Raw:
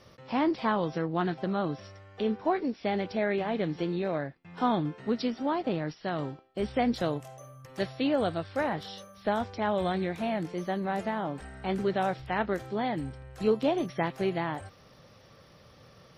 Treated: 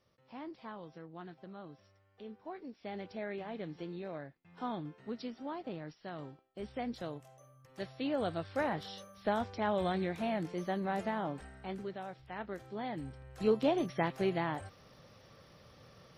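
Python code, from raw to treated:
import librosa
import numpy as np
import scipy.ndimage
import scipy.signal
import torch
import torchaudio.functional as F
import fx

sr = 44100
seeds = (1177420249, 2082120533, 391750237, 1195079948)

y = fx.gain(x, sr, db=fx.line((2.41, -19.0), (3.02, -12.0), (7.64, -12.0), (8.49, -4.0), (11.3, -4.0), (12.05, -16.0), (13.56, -3.0)))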